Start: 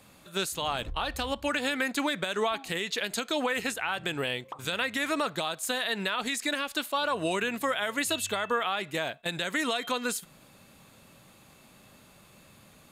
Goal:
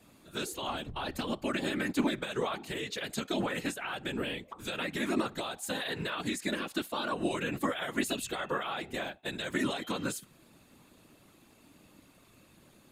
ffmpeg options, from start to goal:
-af "equalizer=f=280:t=o:w=0.58:g=9.5,bandreject=f=389.8:t=h:w=4,bandreject=f=779.6:t=h:w=4,afftfilt=real='hypot(re,im)*cos(2*PI*random(0))':imag='hypot(re,im)*sin(2*PI*random(1))':win_size=512:overlap=0.75"

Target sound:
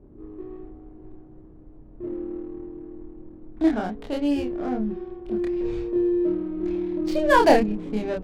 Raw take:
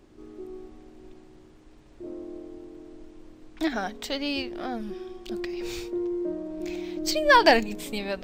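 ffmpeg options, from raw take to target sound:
-filter_complex "[0:a]tiltshelf=f=970:g=8,adynamicsmooth=sensitivity=6.5:basefreq=940,asplit=2[s0][s1];[s1]adelay=28,volume=0.794[s2];[s0][s2]amix=inputs=2:normalize=0,volume=0.794"

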